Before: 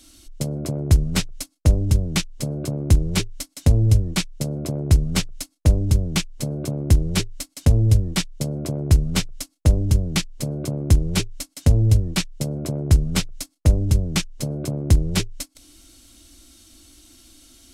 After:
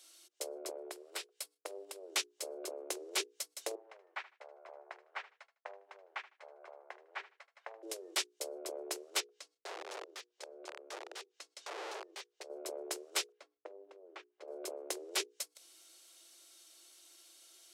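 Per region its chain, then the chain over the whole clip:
0:00.71–0:02.10: high-pass filter 200 Hz 6 dB per octave + parametric band 6,300 Hz −6 dB 0.33 octaves + downward compressor 4 to 1, threshold −26 dBFS
0:03.75–0:07.83: Chebyshev band-pass filter 790–1,900 Hz + repeating echo 77 ms, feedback 24%, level −17 dB
0:09.20–0:12.50: wrap-around overflow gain 17.5 dB + downward compressor, threshold −31 dBFS + band-pass filter 140–5,700 Hz
0:13.32–0:14.48: low-pass filter 1,700 Hz + downward compressor 2 to 1, threshold −34 dBFS
whole clip: Butterworth high-pass 360 Hz 72 dB per octave; mains-hum notches 60/120/180/240/300/360/420/480 Hz; level −8.5 dB

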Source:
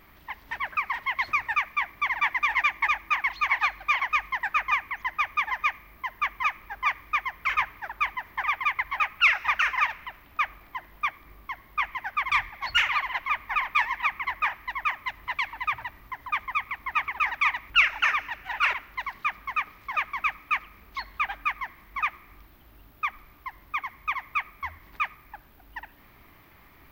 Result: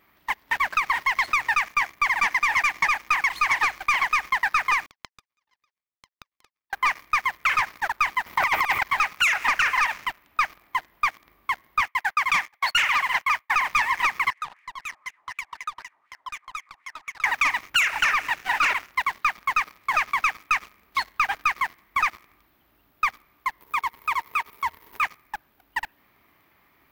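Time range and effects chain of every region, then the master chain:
0:04.86–0:06.73: downward compressor 10 to 1, threshold −36 dBFS + auto-filter notch sine 3.9 Hz 390–3,600 Hz + power curve on the samples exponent 3
0:08.26–0:08.83: notch filter 1,700 Hz, Q 5.7 + transient designer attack +7 dB, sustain +11 dB + compressor whose output falls as the input rises −25 dBFS, ratio −0.5
0:11.81–0:13.55: high-pass filter 650 Hz + downward expander −36 dBFS
0:14.30–0:17.24: variable-slope delta modulation 64 kbit/s + downward compressor 4 to 1, threshold −37 dBFS + LFO wah 4 Hz 770–2,500 Hz, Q 2.5
0:23.60–0:25.03: high-shelf EQ 11,000 Hz +10.5 dB + hollow resonant body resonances 440/930 Hz, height 15 dB + downward compressor 1.5 to 1, threshold −46 dBFS
whole clip: high-pass filter 200 Hz 6 dB per octave; leveller curve on the samples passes 3; downward compressor, threshold −19 dBFS

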